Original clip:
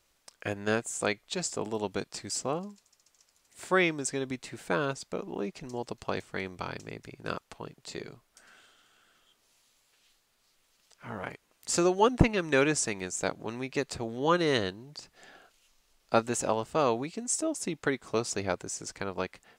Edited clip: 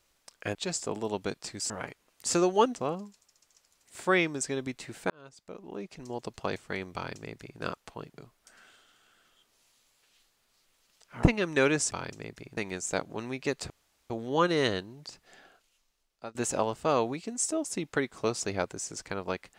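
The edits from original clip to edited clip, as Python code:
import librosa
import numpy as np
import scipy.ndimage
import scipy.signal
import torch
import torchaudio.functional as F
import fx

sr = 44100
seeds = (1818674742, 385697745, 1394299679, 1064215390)

y = fx.edit(x, sr, fx.cut(start_s=0.55, length_s=0.7),
    fx.fade_in_span(start_s=4.74, length_s=1.22),
    fx.duplicate(start_s=6.58, length_s=0.66, to_s=12.87),
    fx.cut(start_s=7.82, length_s=0.26),
    fx.move(start_s=11.13, length_s=1.06, to_s=2.4),
    fx.insert_room_tone(at_s=14.0, length_s=0.4),
    fx.fade_out_to(start_s=14.96, length_s=1.29, floor_db=-21.5), tone=tone)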